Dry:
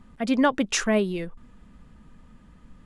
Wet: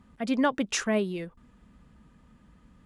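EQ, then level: HPF 40 Hz; -4.0 dB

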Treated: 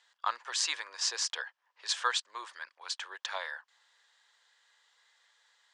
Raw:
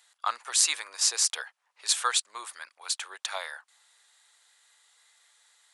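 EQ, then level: speaker cabinet 220–6800 Hz, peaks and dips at 350 Hz +4 dB, 520 Hz +5 dB, 990 Hz +7 dB, 1700 Hz +8 dB, 3100 Hz +5 dB, 5000 Hz +3 dB; low shelf 420 Hz +4 dB; -7.0 dB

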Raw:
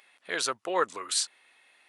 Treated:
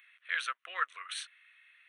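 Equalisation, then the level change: polynomial smoothing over 15 samples; HPF 930 Hz 24 dB/oct; fixed phaser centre 2100 Hz, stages 4; +1.5 dB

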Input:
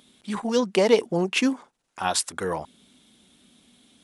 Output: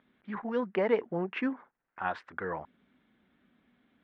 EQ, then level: ladder low-pass 2100 Hz, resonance 45%; 0.0 dB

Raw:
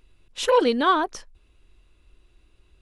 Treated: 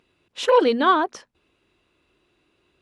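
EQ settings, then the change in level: HPF 170 Hz 12 dB/oct; high shelf 6500 Hz -12 dB; notches 60/120/180/240 Hz; +2.5 dB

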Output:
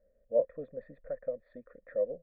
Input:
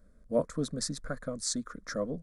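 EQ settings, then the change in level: vocal tract filter e; low shelf 79 Hz +7.5 dB; bell 670 Hz +10 dB 1 oct; 0.0 dB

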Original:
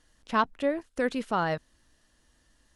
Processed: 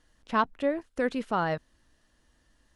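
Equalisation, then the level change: high shelf 4100 Hz -6 dB; 0.0 dB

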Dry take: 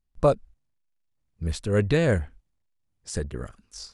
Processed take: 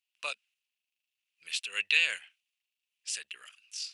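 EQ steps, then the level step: resonant high-pass 2700 Hz, resonance Q 6.5; 0.0 dB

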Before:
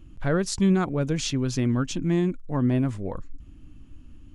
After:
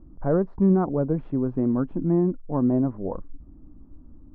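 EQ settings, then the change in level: LPF 1000 Hz 24 dB/oct; bell 110 Hz -12 dB 0.35 oct; low shelf 160 Hz -5 dB; +4.0 dB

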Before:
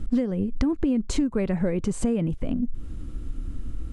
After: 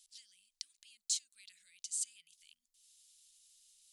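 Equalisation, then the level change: inverse Chebyshev high-pass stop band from 930 Hz, stop band 70 dB; +2.5 dB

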